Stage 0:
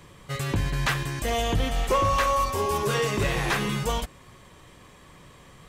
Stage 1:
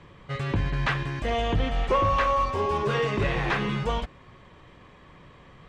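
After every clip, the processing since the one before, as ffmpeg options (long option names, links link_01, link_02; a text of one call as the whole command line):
ffmpeg -i in.wav -af "lowpass=3100" out.wav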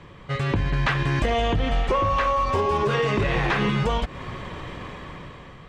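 ffmpeg -i in.wav -af "dynaudnorm=framelen=410:gausssize=5:maxgain=13dB,alimiter=limit=-10.5dB:level=0:latency=1:release=249,acompressor=threshold=-24dB:ratio=6,volume=4.5dB" out.wav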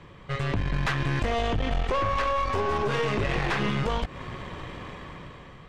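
ffmpeg -i in.wav -af "aeval=exprs='(tanh(11.2*val(0)+0.6)-tanh(0.6))/11.2':channel_layout=same" out.wav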